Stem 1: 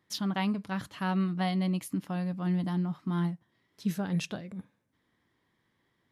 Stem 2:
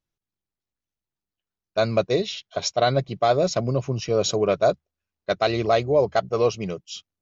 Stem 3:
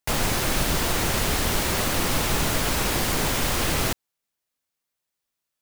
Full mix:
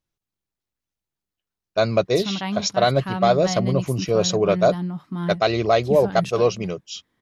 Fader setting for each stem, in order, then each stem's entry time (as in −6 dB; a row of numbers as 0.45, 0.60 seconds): +2.5 dB, +2.0 dB, muted; 2.05 s, 0.00 s, muted